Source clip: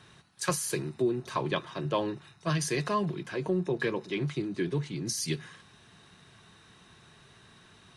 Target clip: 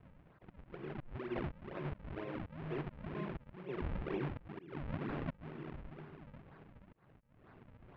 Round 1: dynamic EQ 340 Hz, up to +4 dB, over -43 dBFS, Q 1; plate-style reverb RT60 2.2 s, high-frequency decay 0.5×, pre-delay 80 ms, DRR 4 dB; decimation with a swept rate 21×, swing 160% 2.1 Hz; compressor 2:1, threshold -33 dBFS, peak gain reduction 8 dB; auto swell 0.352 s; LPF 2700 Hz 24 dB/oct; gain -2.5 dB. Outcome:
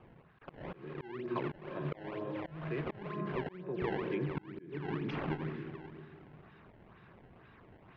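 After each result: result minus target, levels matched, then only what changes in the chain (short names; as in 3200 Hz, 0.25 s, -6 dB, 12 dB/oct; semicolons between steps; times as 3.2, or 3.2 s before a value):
decimation with a swept rate: distortion -11 dB; compressor: peak gain reduction -3.5 dB
change: decimation with a swept rate 70×, swing 160% 2.1 Hz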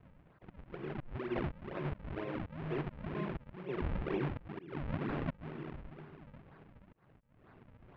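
compressor: peak gain reduction -3 dB
change: compressor 2:1, threshold -39.5 dBFS, peak gain reduction 11.5 dB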